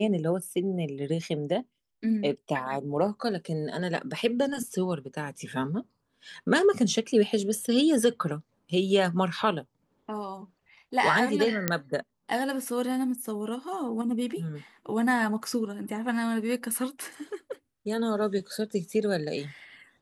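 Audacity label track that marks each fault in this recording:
11.680000	11.680000	pop -8 dBFS

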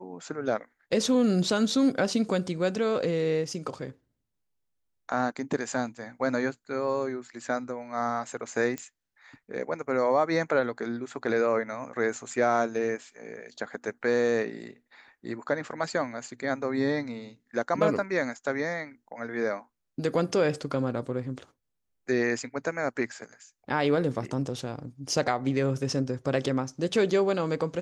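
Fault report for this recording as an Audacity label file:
8.780000	8.780000	pop -20 dBFS

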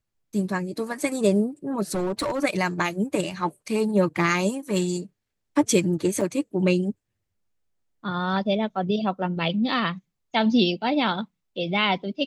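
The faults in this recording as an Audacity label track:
1.910000	2.450000	clipped -22 dBFS
6.210000	6.220000	gap 5.1 ms

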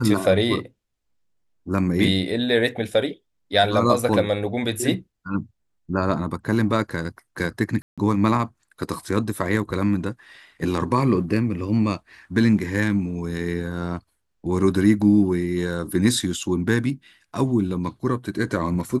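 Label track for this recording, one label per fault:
7.820000	7.980000	gap 0.156 s

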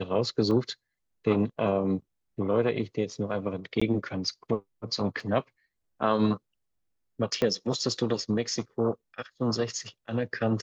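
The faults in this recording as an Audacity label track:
0.510000	0.510000	gap 3.7 ms
3.800000	3.810000	gap 15 ms
5.200000	5.200000	gap 3.1 ms
7.420000	7.420000	pop -14 dBFS

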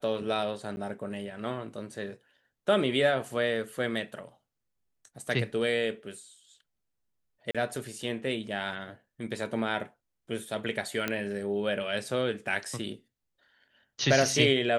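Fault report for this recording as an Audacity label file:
0.760000	0.770000	gap 11 ms
7.510000	7.550000	gap 36 ms
11.080000	11.080000	pop -14 dBFS

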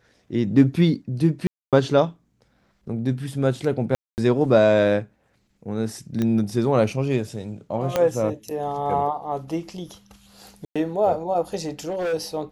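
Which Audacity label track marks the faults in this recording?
1.470000	1.730000	gap 0.257 s
3.950000	4.180000	gap 0.229 s
6.220000	6.220000	pop -13 dBFS
7.960000	7.960000	pop -7 dBFS
10.650000	10.760000	gap 0.106 s
11.610000	12.140000	clipped -22.5 dBFS

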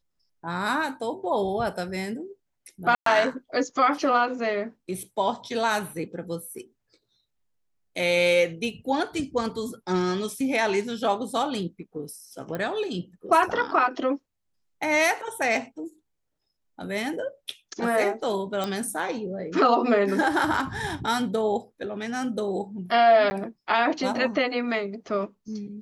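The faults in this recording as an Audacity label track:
2.950000	3.060000	gap 0.113 s
12.550000	12.550000	pop -18 dBFS
18.640000	18.640000	pop -15 dBFS
23.300000	23.310000	gap 10 ms

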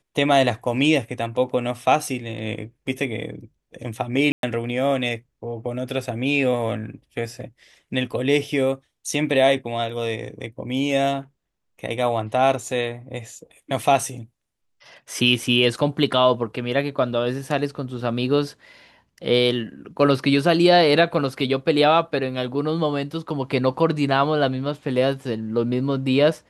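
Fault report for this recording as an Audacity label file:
4.320000	4.430000	gap 0.112 s

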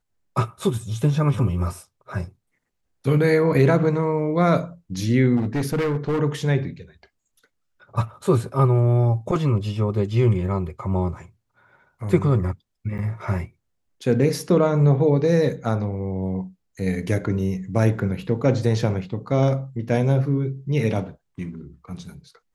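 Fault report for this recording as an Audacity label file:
5.360000	6.190000	clipped -19 dBFS
12.980000	12.990000	gap 7.2 ms

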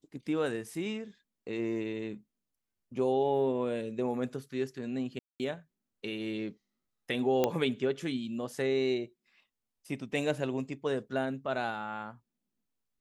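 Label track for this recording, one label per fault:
5.190000	5.400000	gap 0.208 s
7.440000	7.440000	pop -13 dBFS

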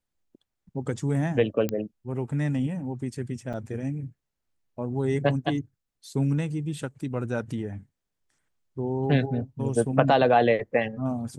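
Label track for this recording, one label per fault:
1.690000	1.690000	pop -14 dBFS
3.530000	3.540000	gap 6.4 ms

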